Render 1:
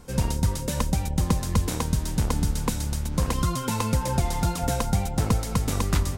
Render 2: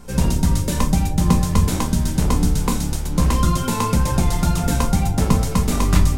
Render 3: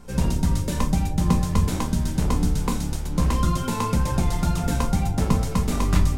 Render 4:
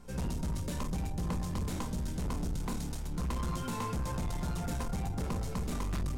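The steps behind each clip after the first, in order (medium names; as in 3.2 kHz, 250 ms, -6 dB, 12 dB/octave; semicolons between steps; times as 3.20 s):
simulated room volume 210 m³, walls furnished, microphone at 1.2 m; trim +3.5 dB
treble shelf 5.8 kHz -4.5 dB; trim -4 dB
saturation -22.5 dBFS, distortion -9 dB; trim -7.5 dB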